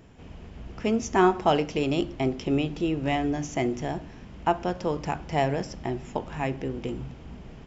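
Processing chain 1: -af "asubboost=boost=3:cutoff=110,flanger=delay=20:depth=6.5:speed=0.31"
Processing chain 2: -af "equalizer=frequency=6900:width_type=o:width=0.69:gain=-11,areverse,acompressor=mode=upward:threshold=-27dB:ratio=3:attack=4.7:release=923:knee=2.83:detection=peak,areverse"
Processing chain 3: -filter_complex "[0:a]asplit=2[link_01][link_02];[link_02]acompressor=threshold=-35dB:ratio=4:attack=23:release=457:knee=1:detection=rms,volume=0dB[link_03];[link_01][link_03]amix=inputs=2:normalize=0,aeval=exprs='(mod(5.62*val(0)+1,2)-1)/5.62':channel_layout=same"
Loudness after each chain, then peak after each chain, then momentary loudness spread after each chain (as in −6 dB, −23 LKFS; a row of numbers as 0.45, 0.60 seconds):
−31.5, −28.0, −25.5 LKFS; −12.0, −8.5, −15.0 dBFS; 15, 15, 15 LU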